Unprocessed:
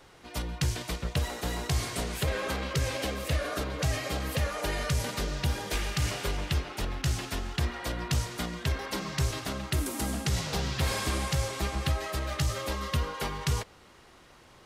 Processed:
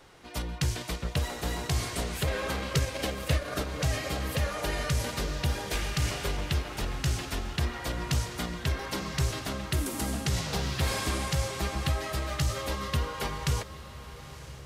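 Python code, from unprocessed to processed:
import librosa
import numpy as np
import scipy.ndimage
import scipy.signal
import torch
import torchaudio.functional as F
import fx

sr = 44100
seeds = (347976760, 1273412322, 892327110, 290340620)

y = fx.transient(x, sr, attack_db=4, sustain_db=-9, at=(2.7, 3.74))
y = fx.echo_diffused(y, sr, ms=940, feedback_pct=41, wet_db=-14.0)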